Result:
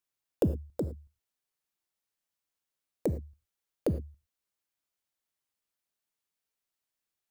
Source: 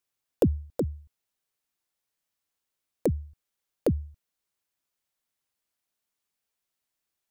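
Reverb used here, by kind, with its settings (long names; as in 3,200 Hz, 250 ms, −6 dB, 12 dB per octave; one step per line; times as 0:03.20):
reverb whose tail is shaped and stops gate 130 ms flat, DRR 11 dB
level −4.5 dB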